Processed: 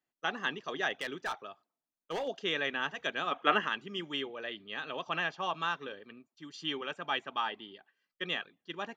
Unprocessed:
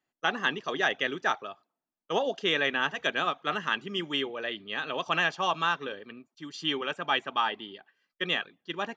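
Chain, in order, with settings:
0:00.93–0:02.28: hard clipping −24.5 dBFS, distortion −18 dB
0:03.31–0:03.67: gain on a spectral selection 210–3,400 Hz +10 dB
0:04.99–0:05.62: high-frequency loss of the air 86 metres
level −6 dB

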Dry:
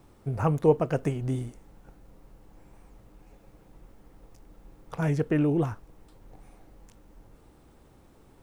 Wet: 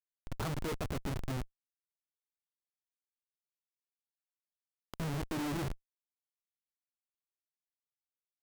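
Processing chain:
high-pass filter 180 Hz 12 dB per octave
parametric band 540 Hz −10 dB 0.81 octaves
mains-hum notches 50/100/150/200/250/300/350/400/450/500 Hz
comparator with hysteresis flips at −32.5 dBFS
level +2.5 dB

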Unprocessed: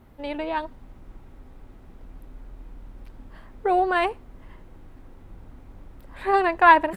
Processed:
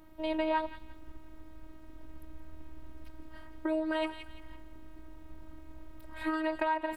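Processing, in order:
delay with a high-pass on its return 171 ms, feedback 31%, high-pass 1,800 Hz, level −13 dB
downward compressor 16 to 1, threshold −24 dBFS, peak gain reduction 16.5 dB
phases set to zero 314 Hz

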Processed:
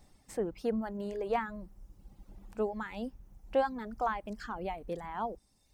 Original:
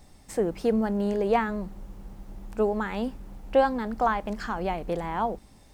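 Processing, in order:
reverb reduction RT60 1.2 s
level −7.5 dB

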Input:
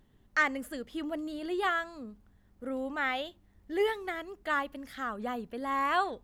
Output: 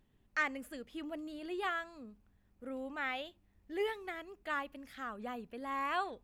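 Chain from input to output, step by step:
parametric band 2,500 Hz +7 dB 0.24 octaves
level −7 dB

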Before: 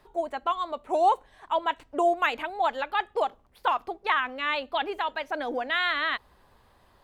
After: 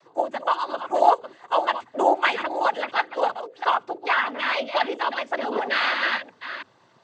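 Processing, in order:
delay that plays each chunk backwards 331 ms, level −10 dB
mains-hum notches 60/120/180/240/300/360/420/480 Hz
cochlear-implant simulation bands 16
level +4 dB

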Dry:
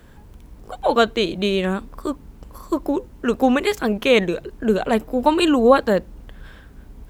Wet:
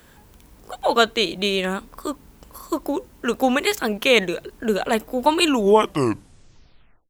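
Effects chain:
turntable brake at the end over 1.67 s
spectral tilt +2 dB per octave

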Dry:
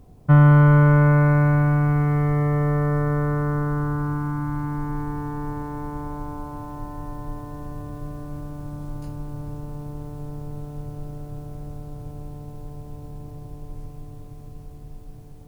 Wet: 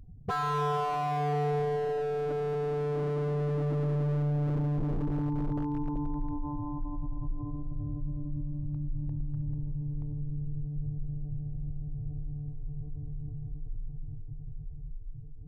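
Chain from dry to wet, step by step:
expanding power law on the bin magnitudes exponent 2.5
wave folding −24.5 dBFS

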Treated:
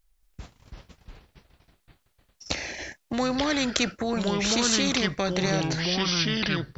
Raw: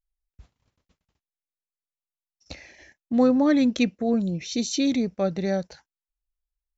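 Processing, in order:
in parallel at −1 dB: brickwall limiter −18.5 dBFS, peak gain reduction 9 dB
on the sum: delay with pitch and tempo change per echo 230 ms, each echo −4 semitones, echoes 2
every bin compressed towards the loudest bin 2 to 1

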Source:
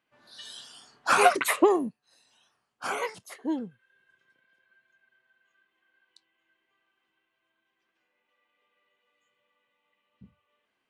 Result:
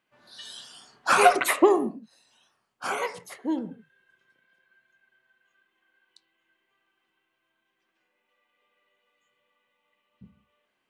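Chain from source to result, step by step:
on a send: low-pass filter 1,900 Hz + convolution reverb, pre-delay 5 ms, DRR 12 dB
on the sum: level +1.5 dB

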